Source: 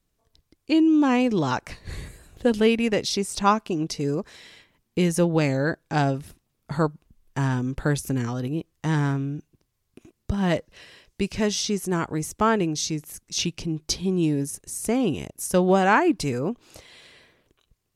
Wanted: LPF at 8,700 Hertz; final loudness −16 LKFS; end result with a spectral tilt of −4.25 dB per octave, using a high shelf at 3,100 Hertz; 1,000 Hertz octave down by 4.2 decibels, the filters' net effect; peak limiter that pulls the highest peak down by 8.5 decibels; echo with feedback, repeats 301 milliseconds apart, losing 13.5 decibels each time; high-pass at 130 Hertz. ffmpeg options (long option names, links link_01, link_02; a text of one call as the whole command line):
ffmpeg -i in.wav -af "highpass=130,lowpass=8700,equalizer=frequency=1000:width_type=o:gain=-6.5,highshelf=frequency=3100:gain=8.5,alimiter=limit=-15dB:level=0:latency=1,aecho=1:1:301|602:0.211|0.0444,volume=10dB" out.wav